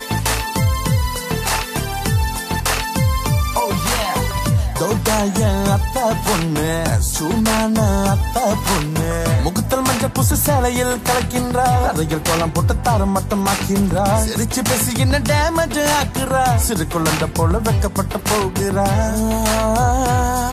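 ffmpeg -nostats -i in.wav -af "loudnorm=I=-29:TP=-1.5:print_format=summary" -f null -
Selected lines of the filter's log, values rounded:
Input Integrated:    -17.6 LUFS
Input True Peak:      -6.1 dBTP
Input LRA:             1.7 LU
Input Threshold:     -27.6 LUFS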